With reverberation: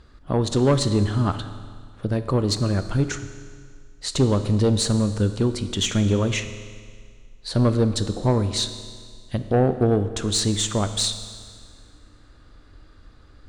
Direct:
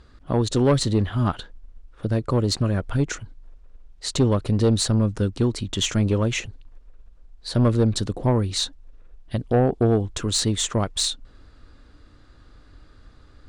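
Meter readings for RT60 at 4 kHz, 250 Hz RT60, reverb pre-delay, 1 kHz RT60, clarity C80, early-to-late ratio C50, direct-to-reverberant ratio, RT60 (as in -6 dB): 1.9 s, 1.9 s, 10 ms, 1.9 s, 12.0 dB, 11.0 dB, 9.5 dB, 1.9 s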